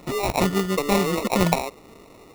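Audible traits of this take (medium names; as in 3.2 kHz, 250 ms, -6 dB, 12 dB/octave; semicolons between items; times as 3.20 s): aliases and images of a low sample rate 1.6 kHz, jitter 0%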